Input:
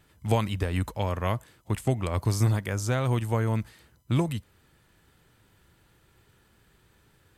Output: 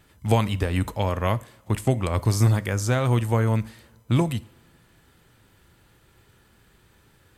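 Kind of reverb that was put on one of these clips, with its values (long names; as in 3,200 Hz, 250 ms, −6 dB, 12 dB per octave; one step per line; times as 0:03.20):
coupled-rooms reverb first 0.47 s, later 2.5 s, from −20 dB, DRR 15 dB
level +4 dB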